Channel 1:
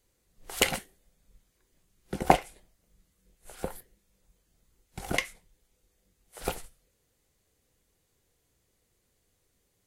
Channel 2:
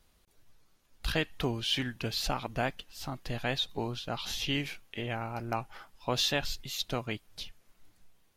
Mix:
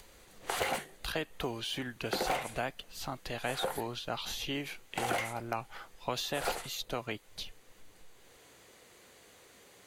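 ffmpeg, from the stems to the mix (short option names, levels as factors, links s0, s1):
-filter_complex "[0:a]bandreject=f=50:t=h:w=6,bandreject=f=100:t=h:w=6,bandreject=f=150:t=h:w=6,asplit=2[s0][s1];[s1]highpass=f=720:p=1,volume=44.7,asoftclip=type=tanh:threshold=0.75[s2];[s0][s2]amix=inputs=2:normalize=0,lowpass=f=2600:p=1,volume=0.501,volume=0.335[s3];[1:a]volume=1.26[s4];[s3][s4]amix=inputs=2:normalize=0,acompressor=mode=upward:threshold=0.00316:ratio=2.5,bandreject=f=5300:w=14,acrossover=split=340|1300|7700[s5][s6][s7][s8];[s5]acompressor=threshold=0.00631:ratio=4[s9];[s6]acompressor=threshold=0.0224:ratio=4[s10];[s7]acompressor=threshold=0.0112:ratio=4[s11];[s8]acompressor=threshold=0.00501:ratio=4[s12];[s9][s10][s11][s12]amix=inputs=4:normalize=0"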